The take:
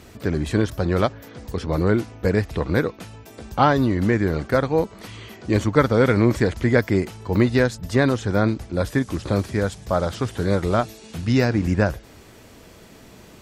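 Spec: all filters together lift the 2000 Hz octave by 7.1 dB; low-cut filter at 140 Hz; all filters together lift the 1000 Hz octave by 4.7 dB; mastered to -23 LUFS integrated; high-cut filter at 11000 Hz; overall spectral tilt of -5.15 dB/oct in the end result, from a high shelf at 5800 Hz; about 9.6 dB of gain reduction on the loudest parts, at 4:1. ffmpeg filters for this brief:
-af "highpass=140,lowpass=11k,equalizer=f=1k:t=o:g=4,equalizer=f=2k:t=o:g=8.5,highshelf=f=5.8k:g=-8.5,acompressor=threshold=-19dB:ratio=4,volume=2.5dB"

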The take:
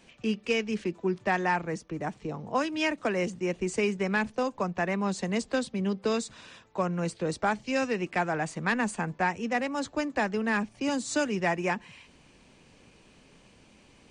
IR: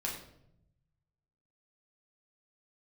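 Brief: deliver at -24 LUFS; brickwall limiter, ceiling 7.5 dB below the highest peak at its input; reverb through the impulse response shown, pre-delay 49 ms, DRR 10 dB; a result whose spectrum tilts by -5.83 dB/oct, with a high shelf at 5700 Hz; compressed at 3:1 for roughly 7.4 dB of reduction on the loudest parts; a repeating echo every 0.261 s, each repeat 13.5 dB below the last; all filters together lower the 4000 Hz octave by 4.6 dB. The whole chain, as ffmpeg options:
-filter_complex "[0:a]equalizer=f=4k:t=o:g=-4,highshelf=f=5.7k:g=-7.5,acompressor=threshold=-33dB:ratio=3,alimiter=level_in=3.5dB:limit=-24dB:level=0:latency=1,volume=-3.5dB,aecho=1:1:261|522:0.211|0.0444,asplit=2[a][b];[1:a]atrim=start_sample=2205,adelay=49[c];[b][c]afir=irnorm=-1:irlink=0,volume=-12.5dB[d];[a][d]amix=inputs=2:normalize=0,volume=13dB"

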